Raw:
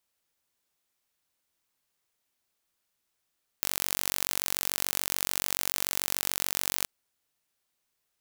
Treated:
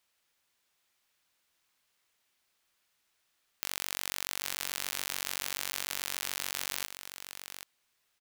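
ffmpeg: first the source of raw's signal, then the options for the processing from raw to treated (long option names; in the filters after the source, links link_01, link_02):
-f lavfi -i "aevalsrc='0.841*eq(mod(n,940),0)':duration=3.22:sample_rate=44100"
-filter_complex "[0:a]equalizer=frequency=2300:width_type=o:width=3:gain=7,alimiter=limit=-8dB:level=0:latency=1,asplit=2[link_01][link_02];[link_02]aecho=0:1:781:0.355[link_03];[link_01][link_03]amix=inputs=2:normalize=0"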